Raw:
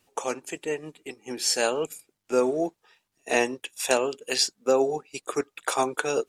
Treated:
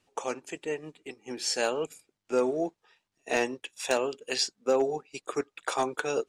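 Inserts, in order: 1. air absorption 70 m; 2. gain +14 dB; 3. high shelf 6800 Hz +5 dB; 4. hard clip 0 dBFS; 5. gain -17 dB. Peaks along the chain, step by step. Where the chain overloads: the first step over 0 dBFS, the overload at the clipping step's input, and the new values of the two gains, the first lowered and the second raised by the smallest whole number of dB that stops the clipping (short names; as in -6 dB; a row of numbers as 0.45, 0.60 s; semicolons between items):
-8.5, +5.5, +6.0, 0.0, -17.0 dBFS; step 2, 6.0 dB; step 2 +8 dB, step 5 -11 dB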